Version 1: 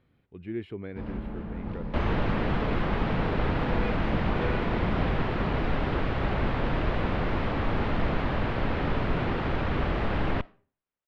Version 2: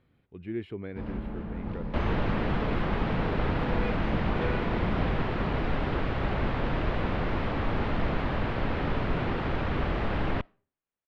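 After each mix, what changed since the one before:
second sound: send -8.0 dB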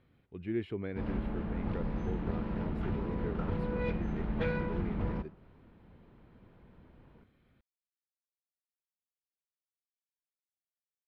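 second sound: muted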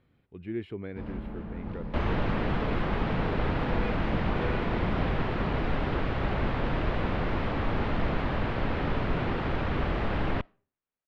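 first sound: send -6.0 dB; second sound: unmuted

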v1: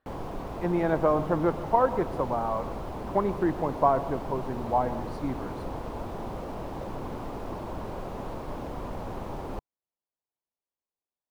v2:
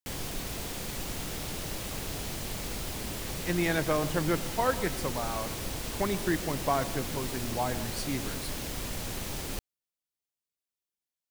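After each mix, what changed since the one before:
speech: entry +2.85 s; master: remove FFT filter 140 Hz 0 dB, 1 kHz +8 dB, 1.8 kHz -8 dB, 7.8 kHz -22 dB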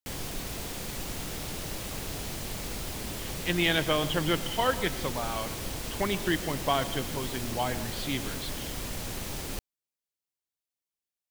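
speech: add resonant low-pass 3.2 kHz, resonance Q 9.6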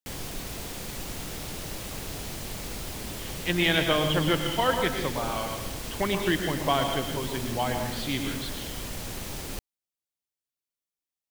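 speech: send +11.0 dB

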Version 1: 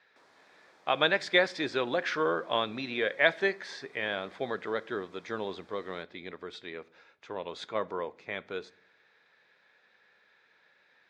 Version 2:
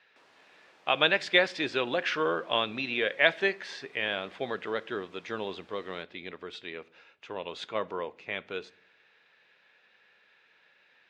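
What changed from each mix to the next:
master: add peaking EQ 2.8 kHz +10.5 dB 0.36 oct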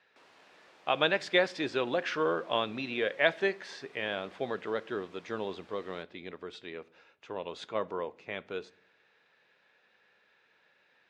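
speech: add peaking EQ 2.7 kHz -6 dB 1.8 oct; background: send on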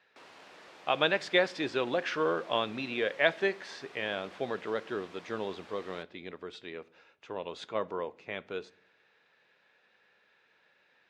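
background +6.5 dB

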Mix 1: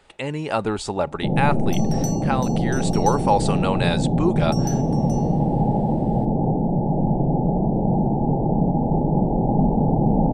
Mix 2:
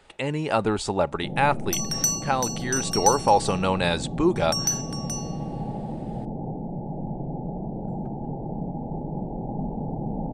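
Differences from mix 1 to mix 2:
first sound -11.5 dB; second sound +10.5 dB

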